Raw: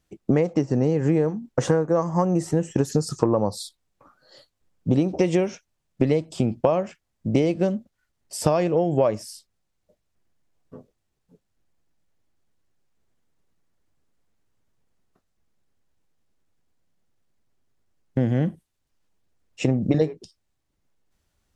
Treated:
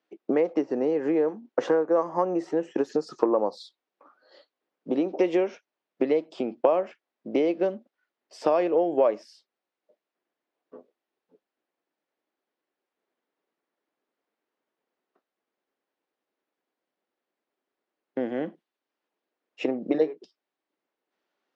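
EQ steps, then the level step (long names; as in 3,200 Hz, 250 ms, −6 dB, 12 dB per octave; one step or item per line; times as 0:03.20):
high-pass filter 300 Hz 24 dB per octave
high-frequency loss of the air 230 metres
0.0 dB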